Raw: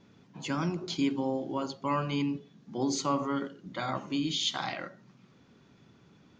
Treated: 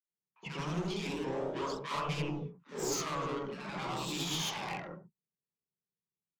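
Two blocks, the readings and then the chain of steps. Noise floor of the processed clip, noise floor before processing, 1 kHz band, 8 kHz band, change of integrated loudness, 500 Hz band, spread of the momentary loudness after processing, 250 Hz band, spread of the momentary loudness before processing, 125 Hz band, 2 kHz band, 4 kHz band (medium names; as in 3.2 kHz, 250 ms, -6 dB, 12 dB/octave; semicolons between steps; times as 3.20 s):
under -85 dBFS, -61 dBFS, -4.0 dB, +0.5 dB, -4.5 dB, -2.5 dB, 9 LU, -8.5 dB, 10 LU, -2.0 dB, -1.5 dB, -4.0 dB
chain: level-controlled noise filter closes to 1 kHz, open at -25 dBFS; gate -49 dBFS, range -45 dB; rippled EQ curve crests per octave 0.77, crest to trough 9 dB; saturation -33 dBFS, distortion -7 dB; ever faster or slower copies 112 ms, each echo +1 st, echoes 3; three bands offset in time highs, mids, lows 70/100 ms, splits 270/1300 Hz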